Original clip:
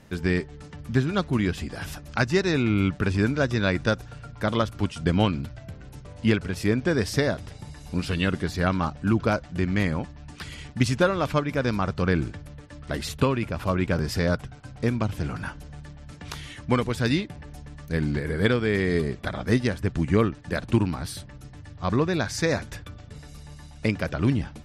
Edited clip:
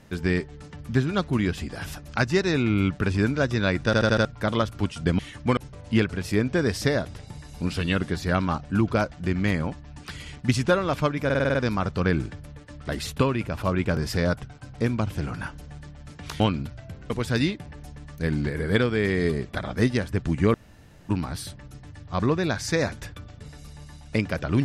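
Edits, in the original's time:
3.85 s: stutter in place 0.08 s, 5 plays
5.19–5.89 s: swap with 16.42–16.80 s
11.57 s: stutter 0.05 s, 7 plays
20.24–20.79 s: room tone

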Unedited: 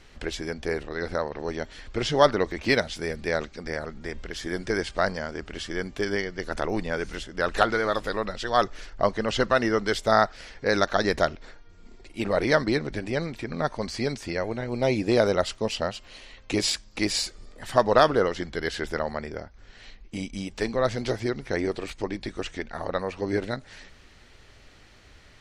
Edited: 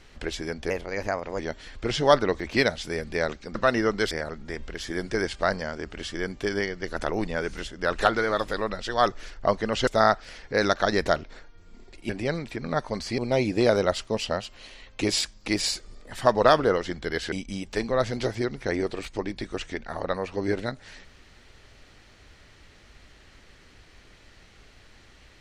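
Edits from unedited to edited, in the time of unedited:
0.70–1.51 s: speed 117%
9.43–9.99 s: move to 3.67 s
12.21–12.97 s: delete
14.06–14.69 s: delete
18.83–20.17 s: delete

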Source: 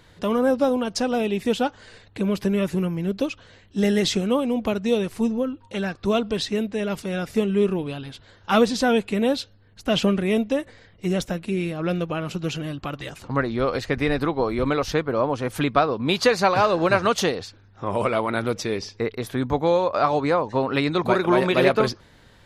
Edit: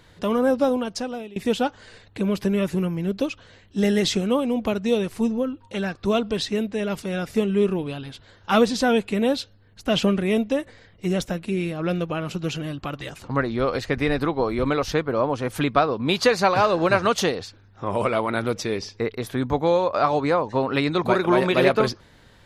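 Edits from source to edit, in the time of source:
0.71–1.36 s: fade out, to -22.5 dB

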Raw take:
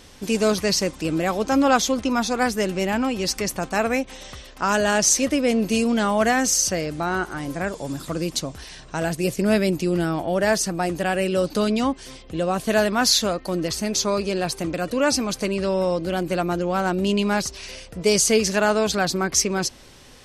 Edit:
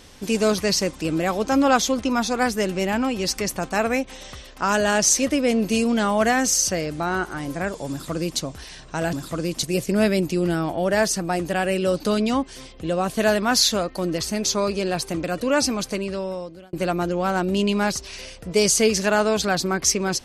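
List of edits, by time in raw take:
7.90–8.40 s: copy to 9.13 s
15.25–16.23 s: fade out

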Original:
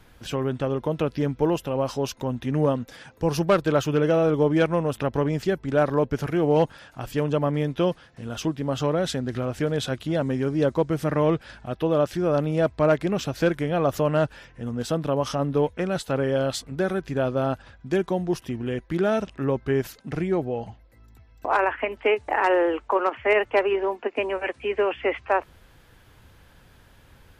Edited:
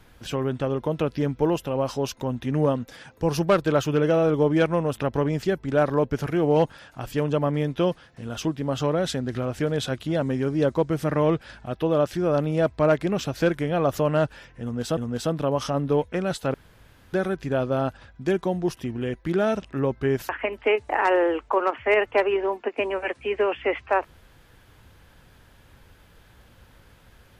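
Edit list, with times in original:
14.62–14.97 s: loop, 2 plays
16.19–16.78 s: room tone
19.94–21.68 s: delete

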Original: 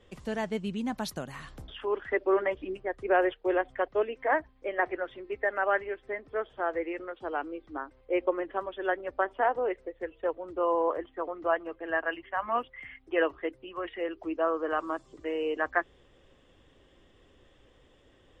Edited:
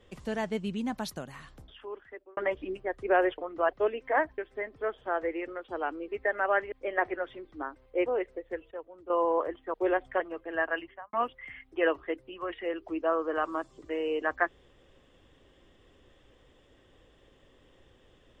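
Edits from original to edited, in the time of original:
0.81–2.37 s: fade out
3.38–3.84 s: swap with 11.24–11.55 s
4.53–5.26 s: swap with 5.90–7.60 s
8.21–9.56 s: delete
10.21–10.60 s: gain -10.5 dB
12.15–12.48 s: studio fade out

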